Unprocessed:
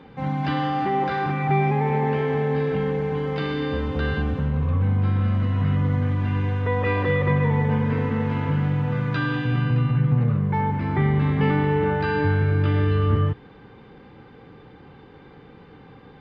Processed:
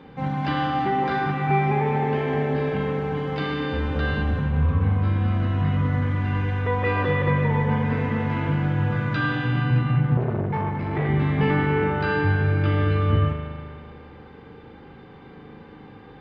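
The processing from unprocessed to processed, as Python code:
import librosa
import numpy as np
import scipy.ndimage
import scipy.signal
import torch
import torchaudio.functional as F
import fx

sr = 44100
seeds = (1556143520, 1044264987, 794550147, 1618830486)

y = fx.rev_spring(x, sr, rt60_s=2.2, pass_ms=(39,), chirp_ms=70, drr_db=2.5)
y = fx.transformer_sat(y, sr, knee_hz=460.0, at=(10.17, 11.09))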